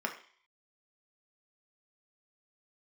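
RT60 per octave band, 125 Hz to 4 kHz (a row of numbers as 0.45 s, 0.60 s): 0.30 s, 0.40 s, 0.40 s, 0.55 s, 0.55 s, 0.60 s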